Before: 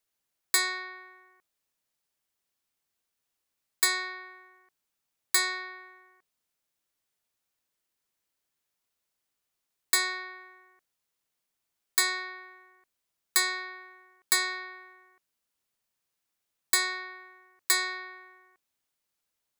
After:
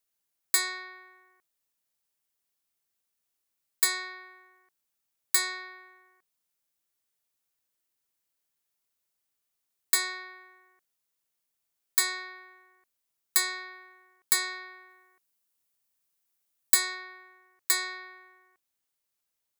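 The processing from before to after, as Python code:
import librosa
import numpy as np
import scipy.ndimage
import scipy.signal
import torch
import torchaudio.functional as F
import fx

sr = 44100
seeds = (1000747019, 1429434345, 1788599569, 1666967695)

y = fx.high_shelf(x, sr, hz=7400.0, db=fx.steps((0.0, 7.0), (14.89, 11.5), (16.94, 5.5)))
y = y * librosa.db_to_amplitude(-3.5)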